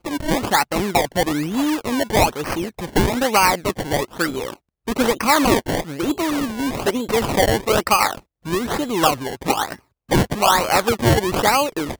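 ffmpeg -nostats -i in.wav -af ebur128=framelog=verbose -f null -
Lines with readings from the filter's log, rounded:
Integrated loudness:
  I:         -19.5 LUFS
  Threshold: -29.6 LUFS
Loudness range:
  LRA:         1.7 LU
  Threshold: -39.9 LUFS
  LRA low:   -20.7 LUFS
  LRA high:  -19.0 LUFS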